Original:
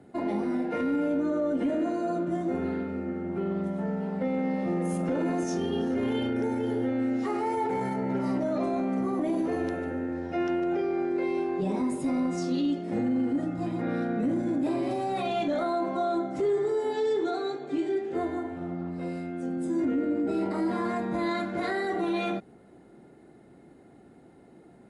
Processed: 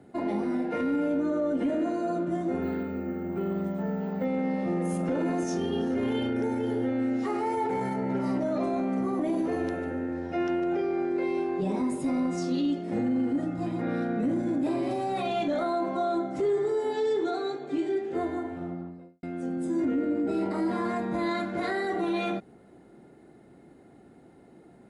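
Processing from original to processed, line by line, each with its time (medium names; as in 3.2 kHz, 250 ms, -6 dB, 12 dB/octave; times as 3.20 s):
2.62–4.25 s: careless resampling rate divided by 2×, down none, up hold
18.56–19.23 s: studio fade out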